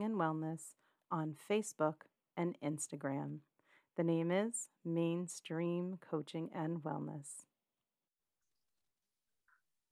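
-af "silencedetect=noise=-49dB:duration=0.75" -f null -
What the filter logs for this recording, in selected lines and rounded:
silence_start: 7.40
silence_end: 9.91 | silence_duration: 2.51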